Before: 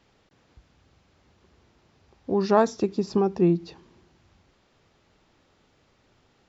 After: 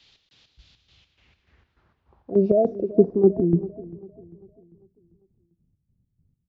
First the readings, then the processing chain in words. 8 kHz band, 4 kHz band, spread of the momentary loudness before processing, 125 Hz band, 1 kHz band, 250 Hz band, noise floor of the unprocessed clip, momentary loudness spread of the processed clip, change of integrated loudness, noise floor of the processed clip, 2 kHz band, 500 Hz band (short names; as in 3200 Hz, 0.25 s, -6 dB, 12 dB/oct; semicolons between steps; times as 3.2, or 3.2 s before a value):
n/a, under -10 dB, 7 LU, +3.0 dB, -8.0 dB, +2.5 dB, -65 dBFS, 18 LU, +3.0 dB, -75 dBFS, under -20 dB, +4.5 dB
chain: spectral delete 2.31–3.04, 720–2200 Hz; high shelf 5800 Hz +5 dB; in parallel at 0 dB: compressor, threshold -31 dBFS, peak gain reduction 14.5 dB; on the sum: bit-crush 10-bit; low-pass sweep 3800 Hz -> 170 Hz, 0.85–3.99; chopper 3.4 Hz, depth 65%, duty 55%; on a send: feedback echo 0.396 s, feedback 56%, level -15 dB; on the sum: downsampling 16000 Hz; three-band expander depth 40%